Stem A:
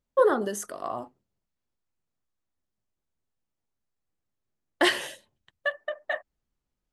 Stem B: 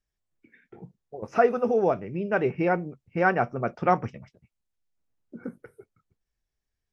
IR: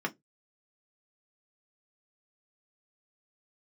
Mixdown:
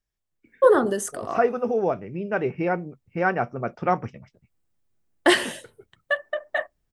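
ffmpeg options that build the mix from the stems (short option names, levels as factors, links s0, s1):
-filter_complex "[0:a]lowshelf=f=320:g=6.5,aexciter=amount=1.7:drive=2.5:freq=7900,deesser=0.4,adelay=450,volume=1.26,asplit=2[s0][s1];[s1]volume=0.1[s2];[1:a]volume=0.944,asplit=2[s3][s4];[s4]apad=whole_len=325232[s5];[s0][s5]sidechaincompress=threshold=0.0282:ratio=8:attack=27:release=582[s6];[2:a]atrim=start_sample=2205[s7];[s2][s7]afir=irnorm=-1:irlink=0[s8];[s6][s3][s8]amix=inputs=3:normalize=0"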